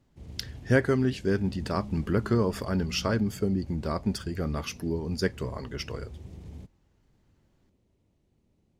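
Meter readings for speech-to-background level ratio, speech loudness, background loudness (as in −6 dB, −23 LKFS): 17.5 dB, −29.0 LKFS, −46.5 LKFS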